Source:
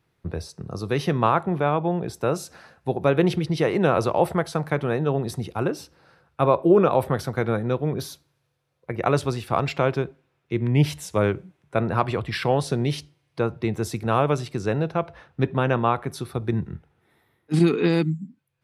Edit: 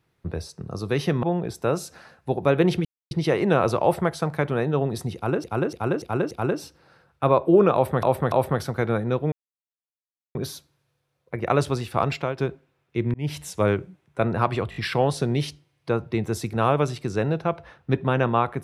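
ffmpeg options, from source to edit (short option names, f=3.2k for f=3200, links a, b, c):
-filter_complex "[0:a]asplit=15[a][b][c][d][e][f][g][h][i][j][k][l][m][n][o];[a]atrim=end=1.232[p];[b]atrim=start=1.818:end=3.44,asetpts=PTS-STARTPTS,afade=t=out:st=1.618:d=0.004:c=hsin,apad=pad_dur=0.26[q];[c]atrim=start=3.44:end=5.772,asetpts=PTS-STARTPTS,afade=t=in:d=0.004:c=hsin[r];[d]atrim=start=5.478:end=5.772[s];[e]atrim=start=5.478:end=5.772[t];[f]atrim=start=5.478:end=5.772[u];[g]atrim=start=5.478:end=7.202[v];[h]atrim=start=6.908:end=7.202[w];[i]atrim=start=6.908:end=7.91,asetpts=PTS-STARTPTS,afade=t=out:st=0.998:d=0.004:c=hsin,apad=pad_dur=1.03[x];[j]atrim=start=7.91:end=9.94,asetpts=PTS-STARTPTS,afade=t=in:d=0.004:c=hsin,afade=t=out:st=1.76:d=0.27:silence=0.237137[y];[k]atrim=start=9.94:end=10.7,asetpts=PTS-STARTPTS,afade=t=in:d=0.004:c=hsin:silence=0.237137,afade=t=out:st=0.756:d=0.004:c=hsin[z];[l]atrim=start=10.7:end=12.282,asetpts=PTS-STARTPTS,afade=t=in:d=0.31[aa];[m]atrim=start=12.258:end=12.282[ab];[n]atrim=start=12.258:end=12.282[ac];[o]atrim=start=12.258[ad];[q][r]concat=n=2:v=0:a=1[ae];[p][ae]acrossfade=d=0.004:c1=hsin:c2=hsin[af];[af][s]acrossfade=d=0.004:c1=hsin:c2=hsin[ag];[ag][t]acrossfade=d=0.004:c1=hsin:c2=hsin[ah];[ah][u]acrossfade=d=0.004:c1=hsin:c2=hsin[ai];[ai][v]acrossfade=d=0.004:c1=hsin:c2=hsin[aj];[aj][w]acrossfade=d=0.004:c1=hsin:c2=hsin[ak];[x][y][z][aa]concat=n=4:v=0:a=1[al];[ak][al]acrossfade=d=0.004:c1=hsin:c2=hsin[am];[am][ab]acrossfade=d=0.004:c1=hsin:c2=hsin[an];[an][ac]acrossfade=d=0.004:c1=hsin:c2=hsin[ao];[ao][ad]acrossfade=d=0.004:c1=hsin:c2=hsin"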